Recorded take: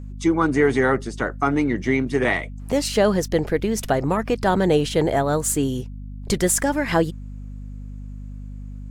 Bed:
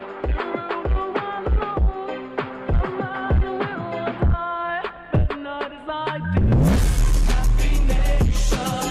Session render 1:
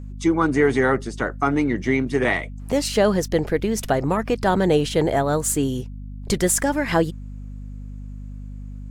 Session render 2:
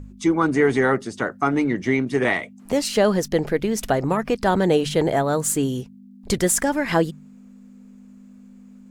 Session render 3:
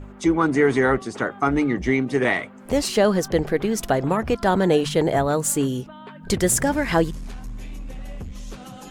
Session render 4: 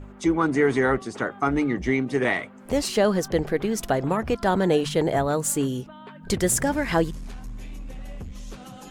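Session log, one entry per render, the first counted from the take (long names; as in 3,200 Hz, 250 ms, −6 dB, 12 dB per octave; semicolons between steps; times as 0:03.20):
no processing that can be heard
hum removal 50 Hz, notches 3
mix in bed −16.5 dB
level −2.5 dB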